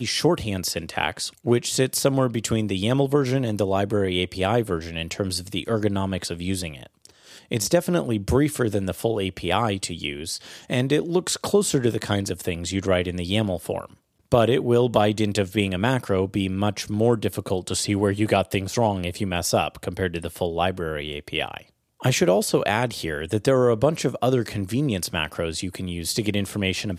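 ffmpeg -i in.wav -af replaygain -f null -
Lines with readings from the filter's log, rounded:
track_gain = +3.3 dB
track_peak = 0.457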